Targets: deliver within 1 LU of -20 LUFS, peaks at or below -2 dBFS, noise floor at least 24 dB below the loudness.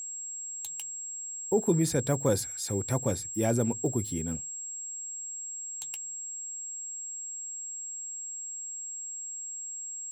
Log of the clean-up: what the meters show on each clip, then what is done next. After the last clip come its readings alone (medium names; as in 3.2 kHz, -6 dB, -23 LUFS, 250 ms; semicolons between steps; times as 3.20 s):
steady tone 7.6 kHz; tone level -36 dBFS; loudness -32.0 LUFS; peak level -14.0 dBFS; loudness target -20.0 LUFS
-> band-stop 7.6 kHz, Q 30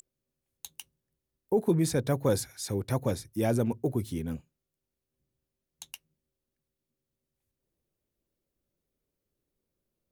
steady tone not found; loudness -29.5 LUFS; peak level -14.5 dBFS; loudness target -20.0 LUFS
-> trim +9.5 dB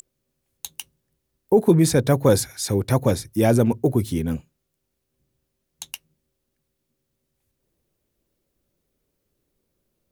loudness -20.0 LUFS; peak level -5.0 dBFS; noise floor -77 dBFS